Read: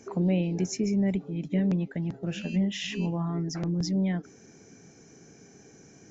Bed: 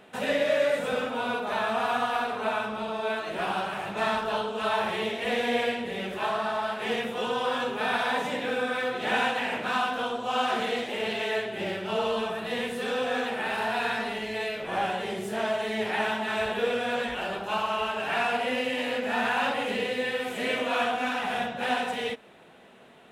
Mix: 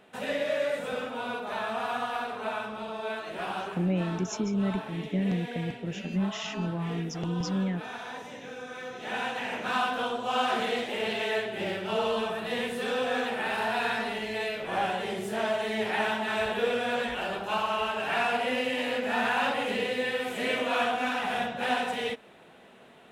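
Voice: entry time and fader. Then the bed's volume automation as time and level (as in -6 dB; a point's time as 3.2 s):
3.60 s, -2.5 dB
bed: 3.62 s -4.5 dB
3.88 s -12.5 dB
8.64 s -12.5 dB
9.81 s -0.5 dB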